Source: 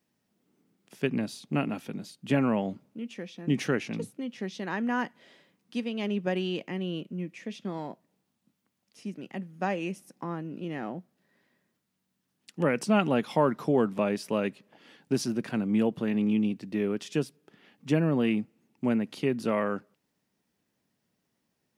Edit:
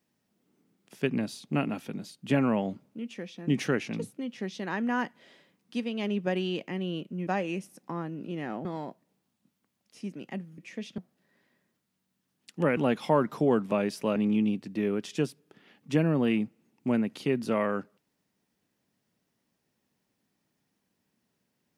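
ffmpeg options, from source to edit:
-filter_complex "[0:a]asplit=7[s0][s1][s2][s3][s4][s5][s6];[s0]atrim=end=7.272[s7];[s1]atrim=start=9.598:end=10.982[s8];[s2]atrim=start=7.668:end=9.602[s9];[s3]atrim=start=7.268:end=7.672[s10];[s4]atrim=start=10.978:end=12.772[s11];[s5]atrim=start=13.038:end=14.432[s12];[s6]atrim=start=16.128[s13];[s7][s8]acrossfade=d=0.004:c1=hsin:c2=hsin[s14];[s14][s9]acrossfade=d=0.004:c1=hsin:c2=hsin[s15];[s15][s10]acrossfade=d=0.004:c1=hsin:c2=hsin[s16];[s16][s11]acrossfade=d=0.004:c1=hsin:c2=hsin[s17];[s17][s12]acrossfade=d=0.004:c1=hsin:c2=hsin[s18];[s18][s13]acrossfade=d=0.004:c1=hsin:c2=hsin"

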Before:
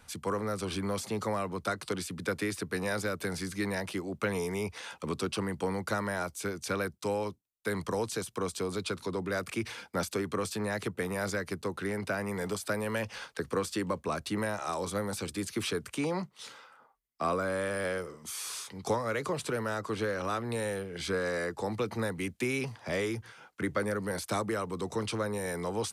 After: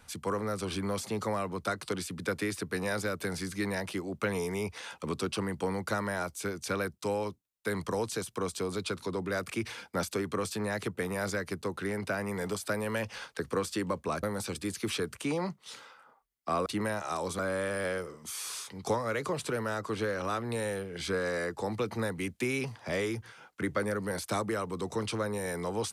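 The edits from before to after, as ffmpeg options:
-filter_complex "[0:a]asplit=4[s0][s1][s2][s3];[s0]atrim=end=14.232[s4];[s1]atrim=start=14.958:end=17.392[s5];[s2]atrim=start=14.228:end=14.962[s6];[s3]atrim=start=17.388[s7];[s4][s5]acrossfade=d=0.004:c1=hsin:c2=hsin[s8];[s8][s6]acrossfade=d=0.004:c1=hsin:c2=hsin[s9];[s9][s7]acrossfade=d=0.004:c1=hsin:c2=hsin"

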